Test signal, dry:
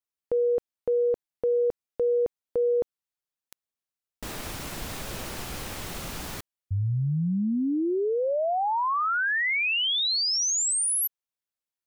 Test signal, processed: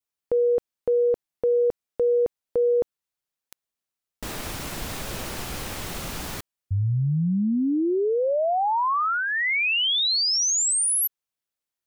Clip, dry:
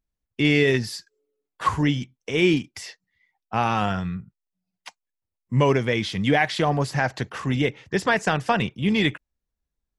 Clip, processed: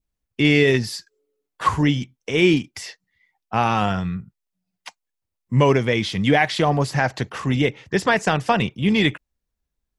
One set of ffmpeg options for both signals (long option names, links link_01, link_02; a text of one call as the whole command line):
ffmpeg -i in.wav -af "adynamicequalizer=threshold=0.00794:dfrequency=1600:dqfactor=3.7:tfrequency=1600:tqfactor=3.7:attack=5:release=100:ratio=0.375:range=2.5:mode=cutabove:tftype=bell,volume=3dB" out.wav